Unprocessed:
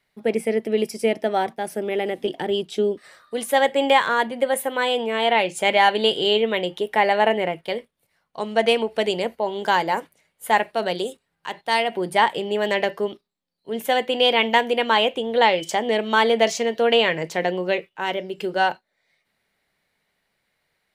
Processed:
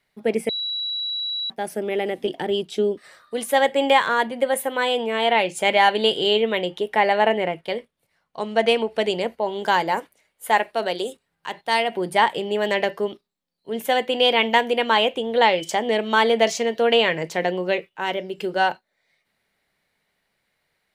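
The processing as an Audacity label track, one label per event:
0.490000	1.500000	beep over 3,910 Hz −24 dBFS
6.630000	9.490000	high-shelf EQ 11,000 Hz −8 dB
9.990000	11.070000	parametric band 140 Hz −11.5 dB

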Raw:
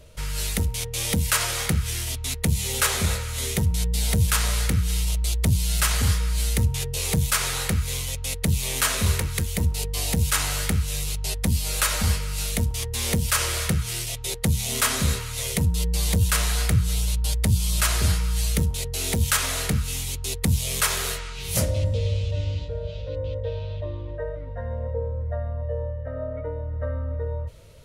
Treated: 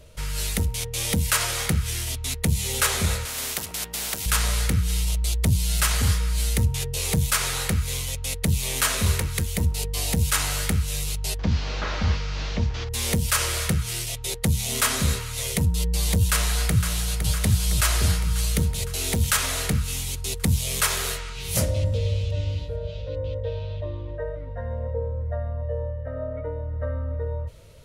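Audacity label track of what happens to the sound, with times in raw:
3.250000	4.260000	every bin compressed towards the loudest bin 4 to 1
11.390000	12.890000	linear delta modulator 32 kbit/s, step −35 dBFS
16.180000	17.150000	delay throw 510 ms, feedback 70%, level −7.5 dB

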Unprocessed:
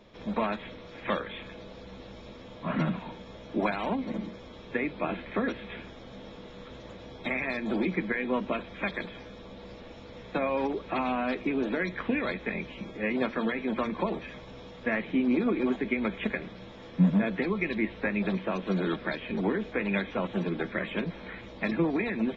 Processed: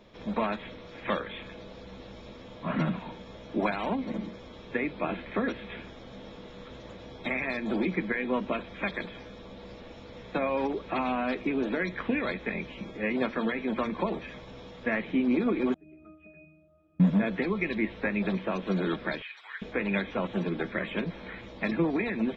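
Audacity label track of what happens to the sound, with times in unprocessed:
15.740000	17.000000	resonances in every octave D#, decay 0.65 s
19.220000	19.620000	high-pass filter 1,400 Hz 24 dB per octave

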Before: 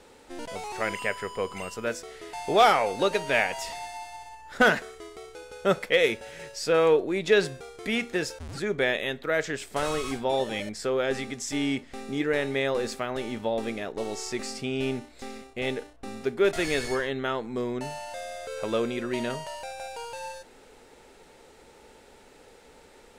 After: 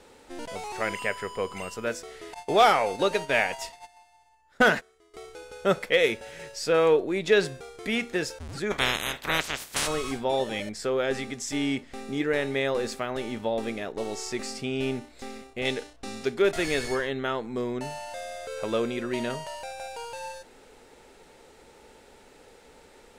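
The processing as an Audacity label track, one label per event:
2.340000	5.140000	noise gate −36 dBFS, range −18 dB
8.700000	9.860000	ceiling on every frequency bin ceiling under each frame's peak by 30 dB
15.650000	16.420000	parametric band 5,200 Hz +8.5 dB 2.1 octaves

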